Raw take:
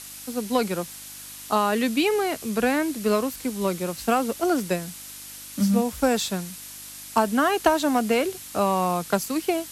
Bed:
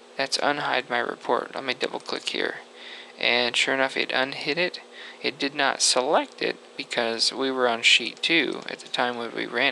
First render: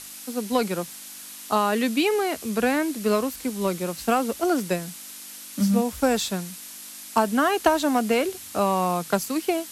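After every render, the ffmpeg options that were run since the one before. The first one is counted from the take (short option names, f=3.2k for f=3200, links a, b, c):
-af "bandreject=f=50:t=h:w=4,bandreject=f=100:t=h:w=4,bandreject=f=150:t=h:w=4"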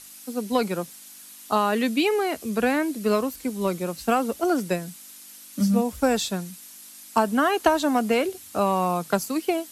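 -af "afftdn=nr=7:nf=-41"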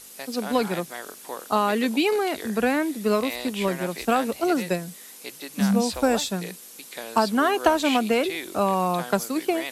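-filter_complex "[1:a]volume=-12dB[a];[0:a][a]amix=inputs=2:normalize=0"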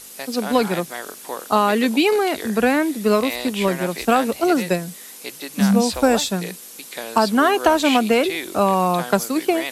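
-af "volume=5dB,alimiter=limit=-3dB:level=0:latency=1"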